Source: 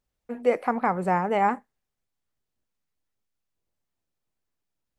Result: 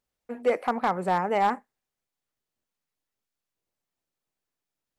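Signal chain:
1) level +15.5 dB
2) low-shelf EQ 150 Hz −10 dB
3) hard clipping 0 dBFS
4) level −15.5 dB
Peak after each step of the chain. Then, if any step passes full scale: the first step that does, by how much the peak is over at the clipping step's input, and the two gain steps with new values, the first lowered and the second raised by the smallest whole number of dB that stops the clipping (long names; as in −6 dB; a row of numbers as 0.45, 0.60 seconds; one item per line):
+5.5, +5.0, 0.0, −15.5 dBFS
step 1, 5.0 dB
step 1 +10.5 dB, step 4 −10.5 dB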